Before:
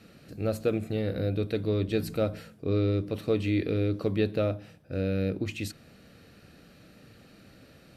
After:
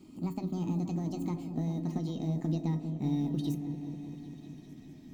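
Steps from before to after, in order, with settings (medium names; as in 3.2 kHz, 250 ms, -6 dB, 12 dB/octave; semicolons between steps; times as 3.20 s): gliding tape speed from 175% -> 135%; compression 16:1, threshold -28 dBFS, peak gain reduction 8 dB; resonant low shelf 380 Hz +11 dB, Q 3; short-mantissa float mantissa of 6-bit; feedback comb 630 Hz, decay 0.17 s, harmonics all, mix 80%; on a send: delay with an opening low-pass 198 ms, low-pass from 400 Hz, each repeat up 1 oct, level -6 dB; on the sum: trim +2 dB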